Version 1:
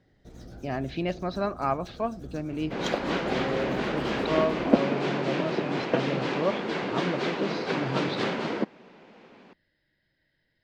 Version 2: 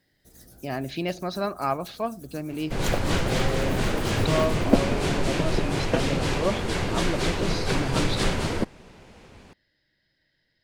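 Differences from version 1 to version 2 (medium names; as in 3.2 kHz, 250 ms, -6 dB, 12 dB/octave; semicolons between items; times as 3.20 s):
first sound -9.0 dB; second sound: remove high-pass 190 Hz 24 dB/octave; master: remove distance through air 200 m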